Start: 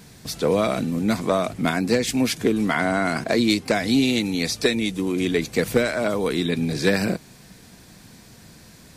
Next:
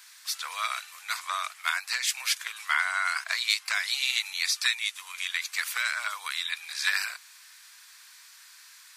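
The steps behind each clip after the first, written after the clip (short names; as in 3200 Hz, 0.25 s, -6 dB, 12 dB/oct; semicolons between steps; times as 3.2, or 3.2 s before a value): steep high-pass 1100 Hz 36 dB/oct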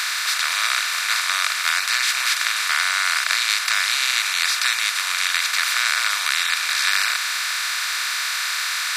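per-bin compression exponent 0.2; gain -1.5 dB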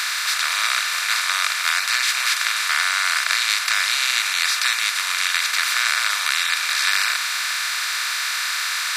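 reverb RT60 1.6 s, pre-delay 3 ms, DRR 12 dB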